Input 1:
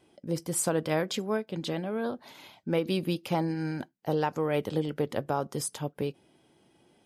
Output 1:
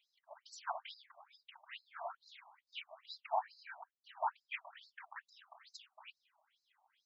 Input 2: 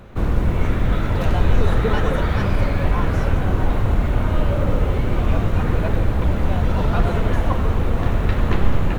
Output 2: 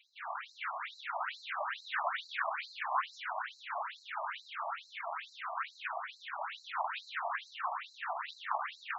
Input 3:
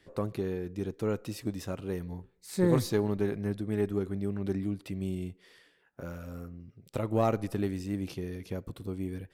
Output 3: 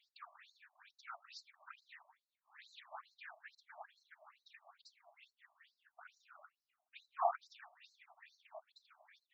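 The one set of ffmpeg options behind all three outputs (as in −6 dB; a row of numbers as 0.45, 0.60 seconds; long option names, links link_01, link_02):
-filter_complex "[0:a]afftfilt=real='hypot(re,im)*cos(2*PI*random(0))':imag='hypot(re,im)*sin(2*PI*random(1))':win_size=512:overlap=0.75,acrossover=split=510 5400:gain=0.2 1 0.126[link_01][link_02][link_03];[link_01][link_02][link_03]amix=inputs=3:normalize=0,afftfilt=real='re*between(b*sr/1024,840*pow(5600/840,0.5+0.5*sin(2*PI*2.3*pts/sr))/1.41,840*pow(5600/840,0.5+0.5*sin(2*PI*2.3*pts/sr))*1.41)':imag='im*between(b*sr/1024,840*pow(5600/840,0.5+0.5*sin(2*PI*2.3*pts/sr))/1.41,840*pow(5600/840,0.5+0.5*sin(2*PI*2.3*pts/sr))*1.41)':win_size=1024:overlap=0.75,volume=4.5dB"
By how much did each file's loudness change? −14.5, −17.5, −14.5 LU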